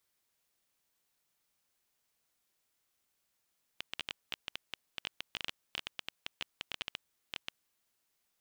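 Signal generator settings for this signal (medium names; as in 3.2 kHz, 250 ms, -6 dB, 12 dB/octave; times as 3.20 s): random clicks 10 per s -19 dBFS 3.96 s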